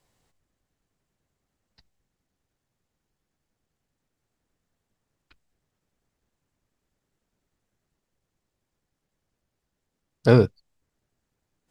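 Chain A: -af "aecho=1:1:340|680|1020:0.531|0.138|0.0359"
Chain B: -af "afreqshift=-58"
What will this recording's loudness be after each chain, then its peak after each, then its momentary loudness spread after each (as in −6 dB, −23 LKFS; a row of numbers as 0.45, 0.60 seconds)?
−21.0, −21.0 LKFS; −2.5, −4.0 dBFS; 17, 8 LU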